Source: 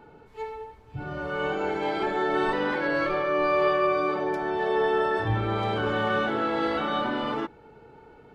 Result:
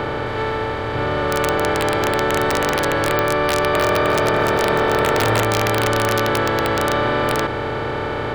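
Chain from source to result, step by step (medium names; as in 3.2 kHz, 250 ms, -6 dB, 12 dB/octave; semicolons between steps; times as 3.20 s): spectral levelling over time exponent 0.2; integer overflow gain 9 dB; 3.43–5.43 s: frequency-shifting echo 306 ms, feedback 36%, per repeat +44 Hz, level -4.5 dB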